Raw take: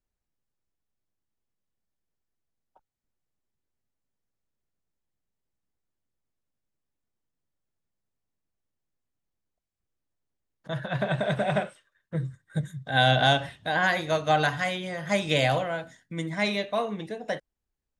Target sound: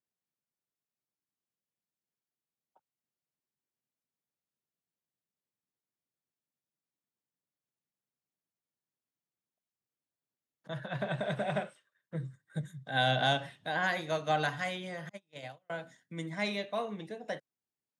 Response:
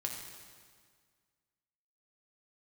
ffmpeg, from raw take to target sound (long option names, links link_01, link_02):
-filter_complex "[0:a]asettb=1/sr,asplit=3[link_01][link_02][link_03];[link_01]atrim=end=15.094[link_04];[link_02]atrim=start=15.09:end=15.7,asetpts=PTS-STARTPTS,afade=type=in:duration=0.004:curve=qsin,afade=type=out:start_time=0.606:duration=0.004:curve=qsin,agate=range=-42dB:threshold=-19dB:ratio=16:detection=peak[link_05];[link_03]atrim=start=15.696[link_06];[link_04][link_05]acrossfade=duration=0.004:curve1=hsin:curve2=qsin[link_07];[link_07][link_06]acrossfade=duration=0.004:curve1=qsin:curve2=hsin,highpass=frequency=120:width=0.5412,highpass=frequency=120:width=1.3066,volume=-7dB"